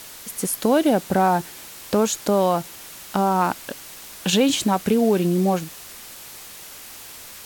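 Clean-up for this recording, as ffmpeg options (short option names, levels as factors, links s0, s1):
-af "afwtdn=0.011"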